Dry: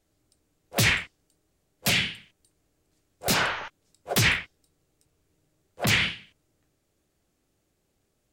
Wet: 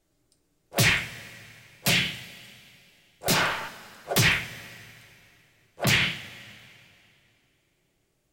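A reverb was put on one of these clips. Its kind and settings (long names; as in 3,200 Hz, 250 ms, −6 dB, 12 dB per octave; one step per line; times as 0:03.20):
coupled-rooms reverb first 0.22 s, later 2.7 s, from −17 dB, DRR 7 dB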